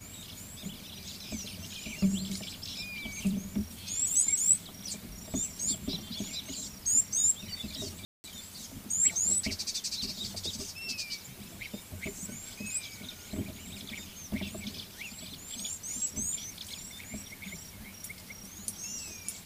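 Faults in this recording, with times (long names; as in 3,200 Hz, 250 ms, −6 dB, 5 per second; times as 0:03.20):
0:08.05–0:08.24: drop-out 190 ms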